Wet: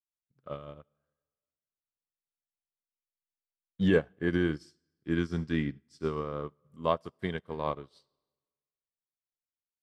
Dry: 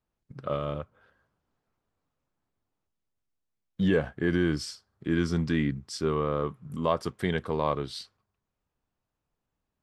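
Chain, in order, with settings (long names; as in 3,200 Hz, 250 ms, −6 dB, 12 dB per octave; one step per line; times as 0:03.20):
convolution reverb RT60 1.6 s, pre-delay 25 ms, DRR 15.5 dB
expander for the loud parts 2.5 to 1, over −42 dBFS
level +2 dB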